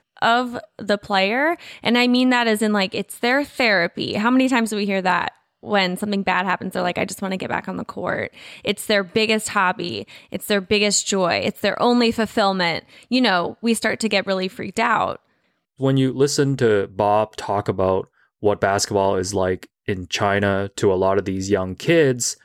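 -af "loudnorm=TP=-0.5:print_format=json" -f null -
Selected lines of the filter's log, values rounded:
"input_i" : "-20.1",
"input_tp" : "-5.8",
"input_lra" : "3.6",
"input_thresh" : "-30.4",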